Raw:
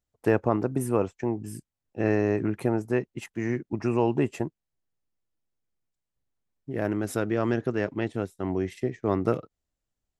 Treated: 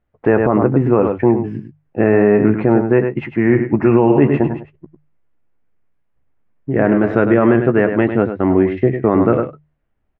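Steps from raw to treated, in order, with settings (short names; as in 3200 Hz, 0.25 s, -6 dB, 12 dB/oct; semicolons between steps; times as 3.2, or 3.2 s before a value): 3.32–7.15 reverse delay 0.191 s, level -11.5 dB; LPF 2300 Hz 24 dB/oct; notches 50/100/150 Hz; doubler 14 ms -10.5 dB; echo 0.101 s -9.5 dB; maximiser +15.5 dB; gain -1 dB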